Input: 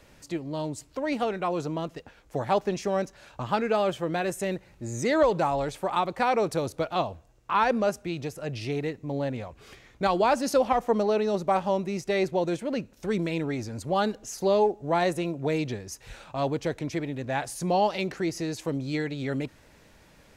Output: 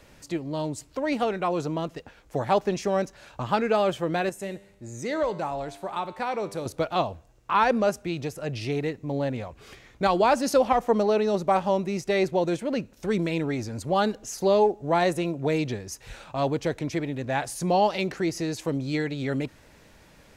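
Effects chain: 4.29–6.66 resonator 99 Hz, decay 0.88 s, harmonics all, mix 60%; gain +2 dB

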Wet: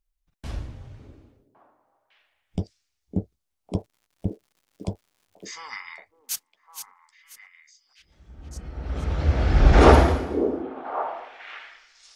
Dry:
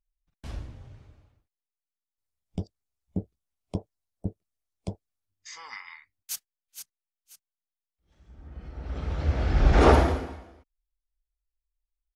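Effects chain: 3.77–5.51 crackle 190/s -56 dBFS; delay with a stepping band-pass 0.555 s, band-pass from 340 Hz, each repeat 1.4 oct, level -6 dB; gain +4.5 dB

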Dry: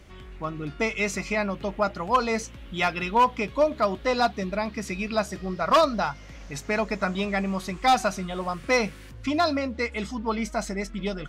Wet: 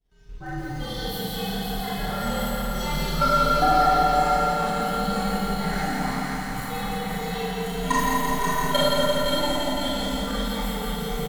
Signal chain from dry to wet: inharmonic rescaling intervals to 122%; expander -40 dBFS; low shelf 89 Hz +7.5 dB; comb 6.6 ms, depth 40%; level quantiser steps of 19 dB; split-band echo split 1000 Hz, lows 0.242 s, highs 0.534 s, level -4.5 dB; Schroeder reverb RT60 1.2 s, combs from 27 ms, DRR -6.5 dB; lo-fi delay 0.17 s, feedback 80%, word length 8-bit, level -4 dB

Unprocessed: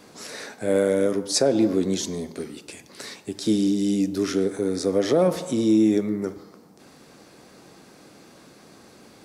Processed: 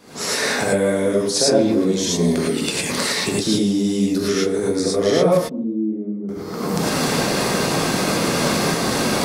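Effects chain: recorder AGC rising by 66 dB/s; 5.37–6.29 ladder band-pass 270 Hz, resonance 45%; non-linear reverb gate 0.13 s rising, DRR -5.5 dB; gain -1.5 dB

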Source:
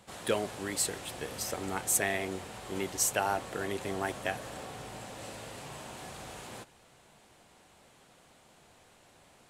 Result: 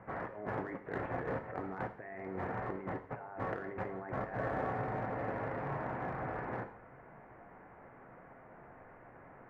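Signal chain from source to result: notches 50/100/150/200 Hz; negative-ratio compressor -42 dBFS, ratio -1; steep low-pass 2000 Hz 48 dB/oct; in parallel at -6.5 dB: crossover distortion -35 dBFS; on the sum: non-linear reverb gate 0.2 s falling, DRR 6.5 dB; gain +1 dB

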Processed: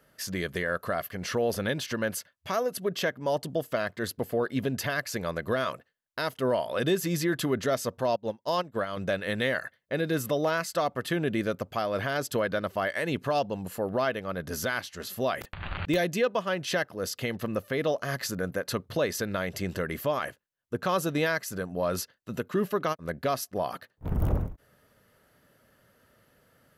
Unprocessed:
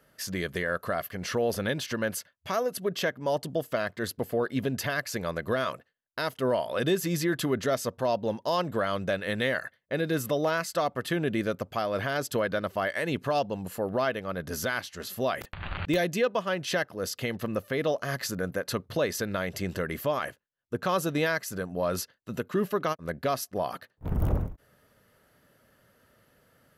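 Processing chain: 8.16–8.97 upward expander 2.5:1, over -40 dBFS

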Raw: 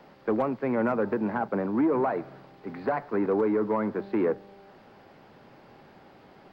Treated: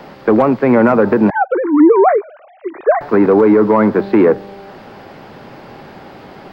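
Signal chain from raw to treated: 1.3–3.01 sine-wave speech; maximiser +18 dB; gain -1 dB

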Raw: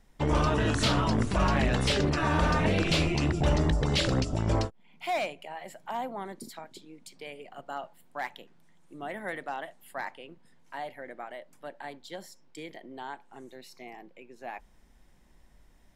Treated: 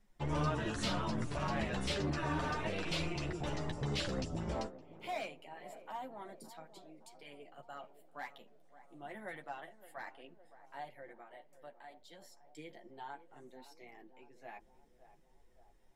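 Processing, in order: 2.53–3.76 bell 160 Hz -6 dB 1.6 oct; 11.08–12.22 compressor 2:1, threshold -44 dBFS, peak gain reduction 5.5 dB; chorus voices 4, 0.28 Hz, delay 10 ms, depth 4.5 ms; narrowing echo 0.565 s, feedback 64%, band-pass 520 Hz, level -13 dB; gain -7 dB

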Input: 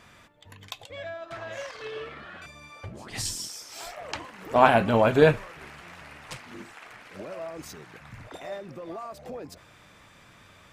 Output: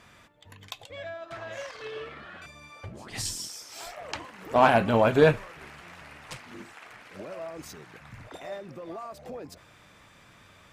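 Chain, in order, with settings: soft clip -7 dBFS, distortion -20 dB; added harmonics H 7 -34 dB, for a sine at -7.5 dBFS

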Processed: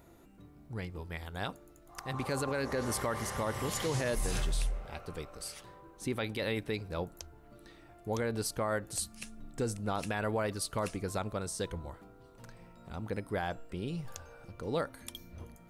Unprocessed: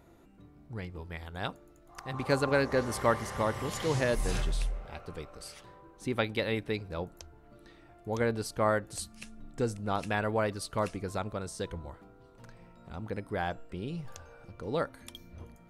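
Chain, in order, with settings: high shelf 7300 Hz +8.5 dB; limiter -23 dBFS, peak gain reduction 10 dB

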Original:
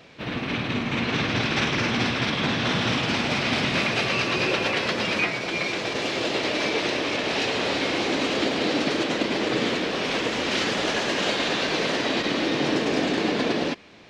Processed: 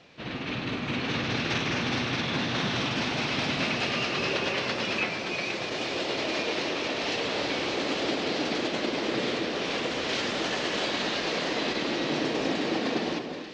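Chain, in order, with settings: speed mistake 24 fps film run at 25 fps; Chebyshev low-pass 5900 Hz, order 2; on a send: echo with dull and thin repeats by turns 0.238 s, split 1400 Hz, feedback 62%, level -6 dB; on the sum: gain -4.5 dB

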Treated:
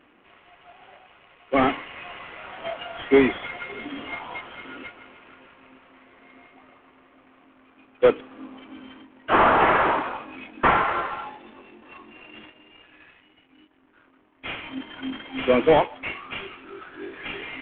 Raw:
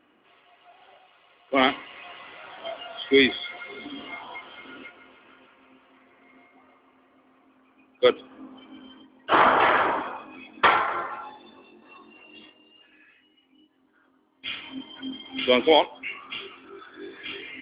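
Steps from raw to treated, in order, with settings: CVSD 16 kbps; gain +4 dB

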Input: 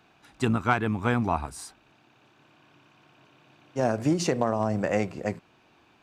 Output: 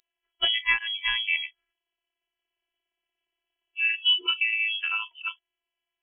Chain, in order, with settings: robotiser 327 Hz; inverted band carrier 3300 Hz; spectral noise reduction 28 dB; gain +3 dB

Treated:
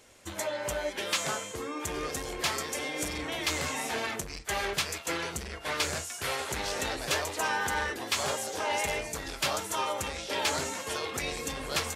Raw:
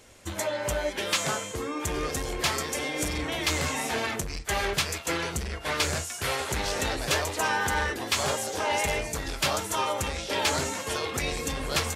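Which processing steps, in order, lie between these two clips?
low shelf 160 Hz -7 dB; gain -3 dB

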